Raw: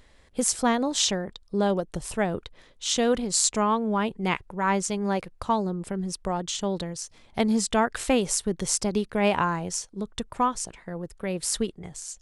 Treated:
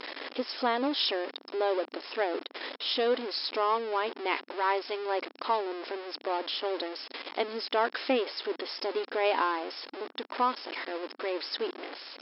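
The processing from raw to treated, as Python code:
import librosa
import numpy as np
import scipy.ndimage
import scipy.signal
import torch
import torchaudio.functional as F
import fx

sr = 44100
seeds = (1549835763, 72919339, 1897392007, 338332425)

y = x + 0.5 * 10.0 ** (-25.0 / 20.0) * np.sign(x)
y = fx.brickwall_bandpass(y, sr, low_hz=250.0, high_hz=5400.0)
y = y * 10.0 ** (-5.0 / 20.0)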